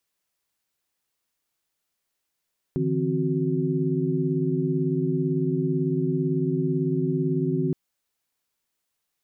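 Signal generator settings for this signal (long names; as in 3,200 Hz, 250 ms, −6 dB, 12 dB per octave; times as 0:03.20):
held notes D3/E3/C4/F#4 sine, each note −27 dBFS 4.97 s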